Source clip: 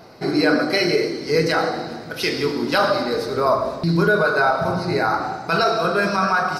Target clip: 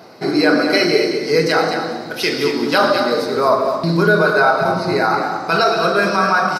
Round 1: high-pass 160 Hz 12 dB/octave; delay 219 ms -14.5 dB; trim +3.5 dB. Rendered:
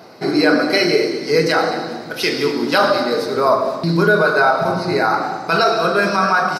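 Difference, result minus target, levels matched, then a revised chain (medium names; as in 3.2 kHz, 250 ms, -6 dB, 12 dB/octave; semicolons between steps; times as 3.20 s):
echo-to-direct -7 dB
high-pass 160 Hz 12 dB/octave; delay 219 ms -7.5 dB; trim +3.5 dB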